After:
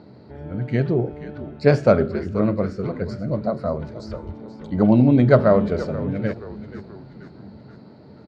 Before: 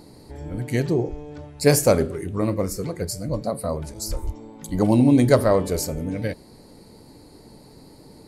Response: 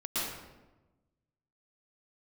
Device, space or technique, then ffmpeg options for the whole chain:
frequency-shifting delay pedal into a guitar cabinet: -filter_complex "[0:a]asplit=6[link_01][link_02][link_03][link_04][link_05][link_06];[link_02]adelay=480,afreqshift=-73,volume=-14dB[link_07];[link_03]adelay=960,afreqshift=-146,volume=-19.4dB[link_08];[link_04]adelay=1440,afreqshift=-219,volume=-24.7dB[link_09];[link_05]adelay=1920,afreqshift=-292,volume=-30.1dB[link_10];[link_06]adelay=2400,afreqshift=-365,volume=-35.4dB[link_11];[link_01][link_07][link_08][link_09][link_10][link_11]amix=inputs=6:normalize=0,highpass=83,equalizer=frequency=88:width_type=q:width=4:gain=6,equalizer=frequency=130:width_type=q:width=4:gain=7,equalizer=frequency=210:width_type=q:width=4:gain=9,equalizer=frequency=400:width_type=q:width=4:gain=4,equalizer=frequency=630:width_type=q:width=4:gain=7,equalizer=frequency=1400:width_type=q:width=4:gain=10,lowpass=frequency=3900:width=0.5412,lowpass=frequency=3900:width=1.3066,volume=-3dB"

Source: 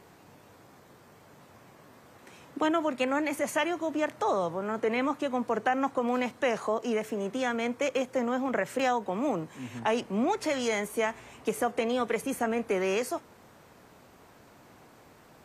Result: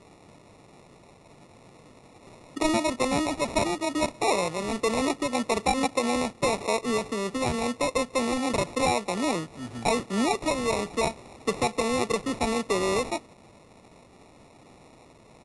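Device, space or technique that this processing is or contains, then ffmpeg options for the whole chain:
crushed at another speed: -af "asetrate=88200,aresample=44100,acrusher=samples=14:mix=1:aa=0.000001,asetrate=22050,aresample=44100,volume=2.5dB"

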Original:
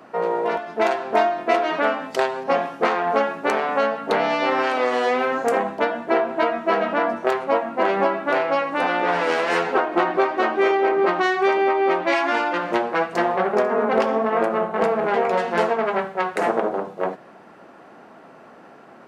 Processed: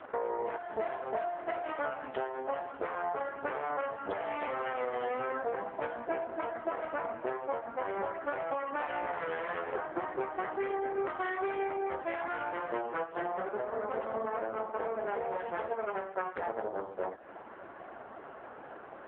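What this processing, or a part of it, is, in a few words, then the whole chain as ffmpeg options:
voicemail: -filter_complex "[0:a]bandreject=frequency=2500:width=12,asettb=1/sr,asplit=3[link_01][link_02][link_03];[link_01]atrim=end=11.044[link_04];[link_02]atrim=start=11.04:end=11.64,asetpts=PTS-STARTPTS,afade=type=in:duration=0.004:curve=qsin,afade=type=out:start_time=0.596:duration=0.004:curve=qsin,aemphasis=mode=production:type=75kf[link_05];[link_03]atrim=start=11.636[link_06];[link_04][link_05]acrossfade=duration=0.004:curve1=hsin:curve2=qsin[link_07];[link_07][link_06]acrossfade=duration=0.004:curve1=qsin:curve2=hsin,highpass=310,lowpass=2800,acompressor=threshold=-33dB:ratio=8,volume=2.5dB" -ar 8000 -c:a libopencore_amrnb -b:a 4750

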